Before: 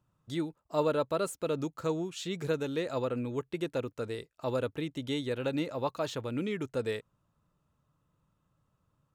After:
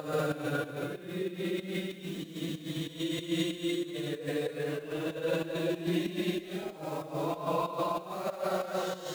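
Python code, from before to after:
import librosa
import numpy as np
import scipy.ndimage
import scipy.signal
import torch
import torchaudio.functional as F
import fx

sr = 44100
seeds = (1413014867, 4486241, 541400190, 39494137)

p1 = x + 0.5 * 10.0 ** (-40.5 / 20.0) * np.sign(x)
p2 = scipy.signal.sosfilt(scipy.signal.butter(2, 76.0, 'highpass', fs=sr, output='sos'), p1)
p3 = fx.transient(p2, sr, attack_db=3, sustain_db=-9)
p4 = fx.paulstretch(p3, sr, seeds[0], factor=5.9, window_s=0.25, from_s=4.56)
p5 = fx.volume_shaper(p4, sr, bpm=94, per_beat=2, depth_db=-12, release_ms=124.0, shape='slow start')
p6 = fx.pitch_keep_formants(p5, sr, semitones=3.0)
p7 = fx.high_shelf(p6, sr, hz=7700.0, db=7.0)
y = p7 + fx.echo_single(p7, sr, ms=195, db=-21.0, dry=0)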